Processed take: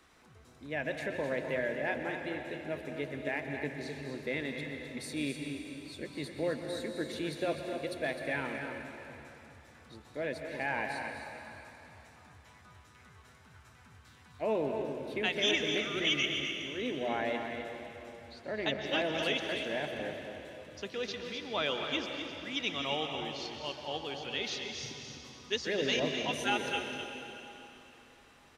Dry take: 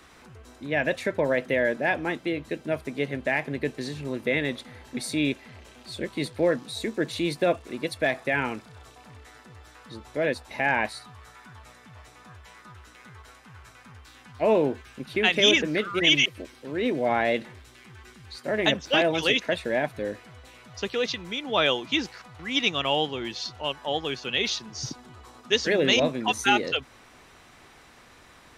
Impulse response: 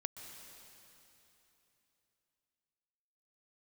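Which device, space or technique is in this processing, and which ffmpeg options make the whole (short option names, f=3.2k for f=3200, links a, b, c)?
cave: -filter_complex "[0:a]asettb=1/sr,asplit=3[a][b][c];[a]atrim=end=18.294[d];[b]atrim=start=18.29:end=18.86,asetpts=PTS-STARTPTS,afade=t=in:d=0.004:c=qsin,afade=t=out:st=0.566:d=0.004:c=qsin,lowpass=5.3k[e];[c]atrim=start=18.856[f];[d][e]acrossfade=d=0.004:c1=hsin:c2=qsin[g];[g][f]acrossfade=d=0.004:c1=qsin:c2=hsin,aecho=1:1:256:0.376[h];[1:a]atrim=start_sample=2205[i];[h][i]afir=irnorm=-1:irlink=0,bandreject=f=60:t=h:w=6,bandreject=f=120:t=h:w=6,bandreject=f=180:t=h:w=6,volume=-7.5dB"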